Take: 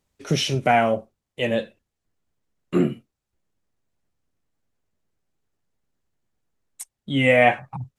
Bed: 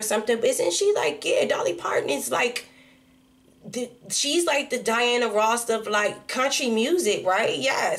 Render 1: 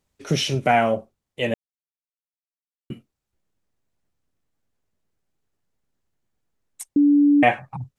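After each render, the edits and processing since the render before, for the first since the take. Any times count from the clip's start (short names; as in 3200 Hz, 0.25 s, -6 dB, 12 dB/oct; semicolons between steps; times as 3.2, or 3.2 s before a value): 1.54–2.9 mute; 6.96–7.43 bleep 289 Hz -12 dBFS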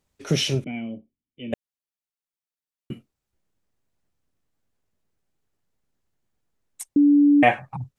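0.64–1.53 vocal tract filter i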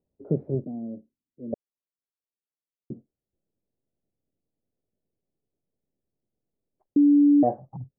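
inverse Chebyshev low-pass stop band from 2700 Hz, stop band 70 dB; low shelf 110 Hz -11 dB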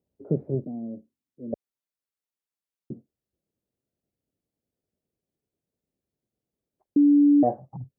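HPF 43 Hz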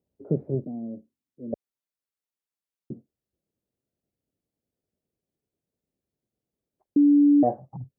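nothing audible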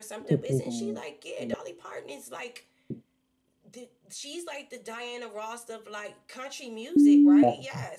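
add bed -16.5 dB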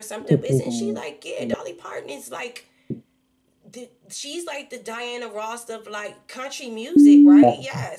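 gain +7.5 dB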